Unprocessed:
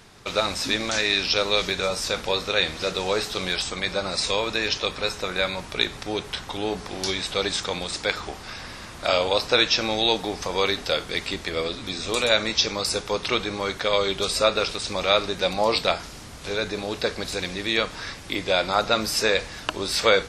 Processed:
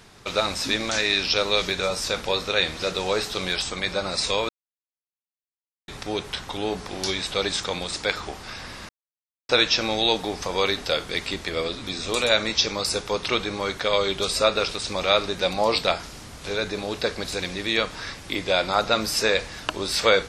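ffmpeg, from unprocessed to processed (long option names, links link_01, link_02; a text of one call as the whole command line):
ffmpeg -i in.wav -filter_complex "[0:a]asplit=5[link_01][link_02][link_03][link_04][link_05];[link_01]atrim=end=4.49,asetpts=PTS-STARTPTS,afade=type=out:start_time=4.486:duration=0.004:curve=hsin[link_06];[link_02]atrim=start=4.49:end=5.88,asetpts=PTS-STARTPTS,volume=0[link_07];[link_03]atrim=start=5.88:end=8.89,asetpts=PTS-STARTPTS,afade=type=in:duration=0.004:curve=hsin,afade=type=out:start_time=3.006:duration=0.004:curve=hsin[link_08];[link_04]atrim=start=8.89:end=9.49,asetpts=PTS-STARTPTS,volume=0[link_09];[link_05]atrim=start=9.49,asetpts=PTS-STARTPTS,afade=type=in:duration=0.004:curve=hsin[link_10];[link_06][link_07][link_08][link_09][link_10]concat=n=5:v=0:a=1" out.wav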